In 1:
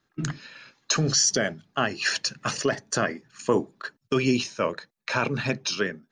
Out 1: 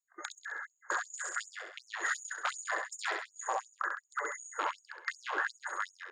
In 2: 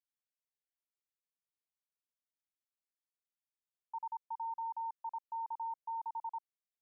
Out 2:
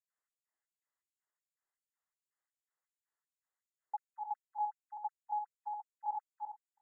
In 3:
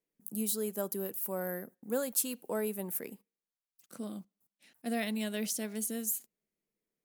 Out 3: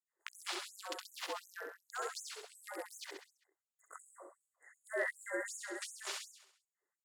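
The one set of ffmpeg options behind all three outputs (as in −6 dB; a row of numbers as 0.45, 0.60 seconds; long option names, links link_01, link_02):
-filter_complex "[0:a]bass=frequency=250:gain=7,treble=frequency=4000:gain=7,afftfilt=real='re*lt(hypot(re,im),0.2)':imag='im*lt(hypot(re,im),0.2)':win_size=1024:overlap=0.75,afreqshift=-71,afftfilt=real='re*(1-between(b*sr/4096,2100,6600))':imag='im*(1-between(b*sr/4096,2100,6600))':win_size=4096:overlap=0.75,aeval=exprs='0.0501*(abs(mod(val(0)/0.0501+3,4)-2)-1)':channel_layout=same,acompressor=threshold=-36dB:ratio=2.5,firequalizer=gain_entry='entry(350,0);entry(950,6);entry(4600,3);entry(13000,-29)':delay=0.05:min_phase=1,asplit=2[link_01][link_02];[link_02]aecho=0:1:66|132|198|264|330|396|462:0.631|0.341|0.184|0.0994|0.0537|0.029|0.0156[link_03];[link_01][link_03]amix=inputs=2:normalize=0,afftfilt=real='re*gte(b*sr/1024,300*pow(6300/300,0.5+0.5*sin(2*PI*2.7*pts/sr)))':imag='im*gte(b*sr/1024,300*pow(6300/300,0.5+0.5*sin(2*PI*2.7*pts/sr)))':win_size=1024:overlap=0.75,volume=1dB"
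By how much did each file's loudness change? −11.0, −0.5, −8.0 LU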